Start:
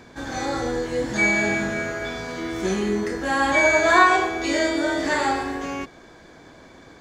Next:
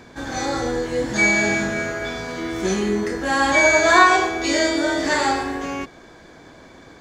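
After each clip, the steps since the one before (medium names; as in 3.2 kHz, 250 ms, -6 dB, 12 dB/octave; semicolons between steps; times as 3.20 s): dynamic bell 5.6 kHz, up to +6 dB, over -40 dBFS, Q 1.3; trim +2 dB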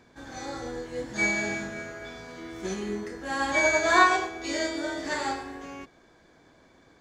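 upward expansion 1.5:1, over -25 dBFS; trim -5.5 dB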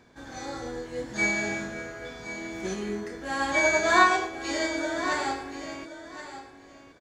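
feedback delay 1073 ms, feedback 15%, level -12 dB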